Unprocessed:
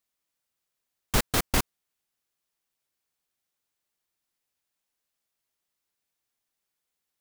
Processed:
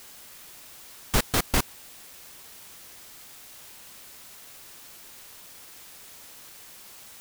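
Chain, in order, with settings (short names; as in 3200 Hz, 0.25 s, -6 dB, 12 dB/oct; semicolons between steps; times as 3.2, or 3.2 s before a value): requantised 8-bit, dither triangular; gain +1 dB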